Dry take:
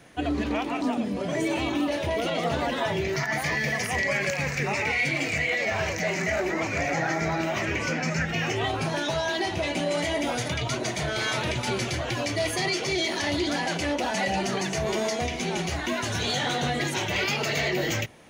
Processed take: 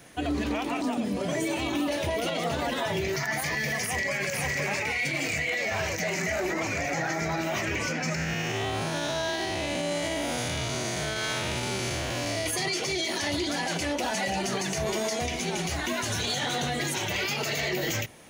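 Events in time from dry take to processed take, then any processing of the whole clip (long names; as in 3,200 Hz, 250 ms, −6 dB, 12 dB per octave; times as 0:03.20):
0:03.82–0:04.28: delay throw 510 ms, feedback 10%, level −1 dB
0:08.15–0:12.46: spectrum smeared in time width 185 ms
whole clip: high-shelf EQ 6,800 Hz +11 dB; brickwall limiter −20 dBFS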